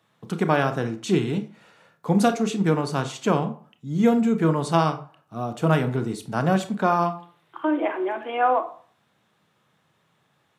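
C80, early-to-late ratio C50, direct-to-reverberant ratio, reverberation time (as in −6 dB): 17.5 dB, 13.0 dB, 8.0 dB, 0.45 s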